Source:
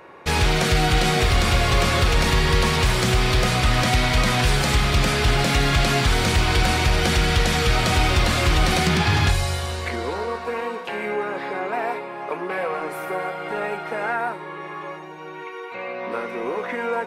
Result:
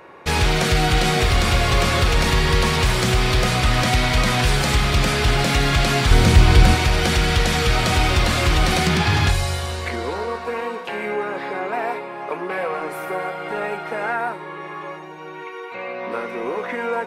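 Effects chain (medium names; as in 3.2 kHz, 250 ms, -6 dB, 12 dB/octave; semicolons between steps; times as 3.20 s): 6.11–6.75 s: bass shelf 330 Hz +8.5 dB; trim +1 dB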